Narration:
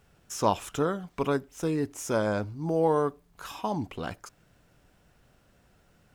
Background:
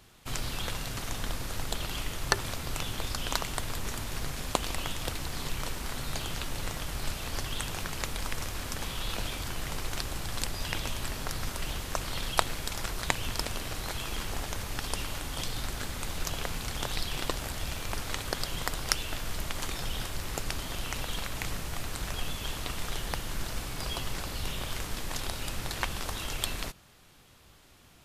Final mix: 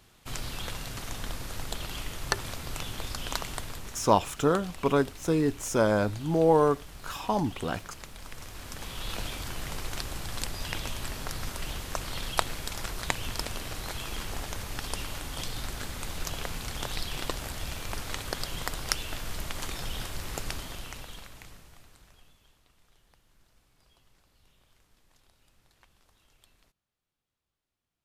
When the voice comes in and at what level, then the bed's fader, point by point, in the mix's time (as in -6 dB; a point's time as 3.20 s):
3.65 s, +3.0 dB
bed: 3.54 s -2 dB
4.15 s -11 dB
8.16 s -11 dB
9.13 s -1 dB
20.51 s -1 dB
22.63 s -30.5 dB